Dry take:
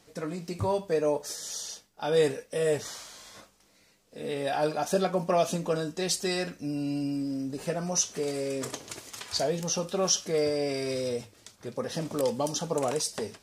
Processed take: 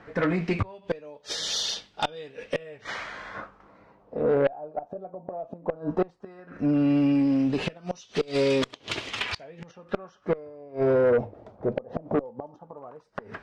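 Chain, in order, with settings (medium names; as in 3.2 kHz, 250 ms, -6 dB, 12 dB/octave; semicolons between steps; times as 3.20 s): inverted gate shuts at -21 dBFS, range -28 dB; LFO low-pass sine 0.15 Hz 680–3600 Hz; Chebyshev shaper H 5 -15 dB, 8 -30 dB, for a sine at -17.5 dBFS; trim +5 dB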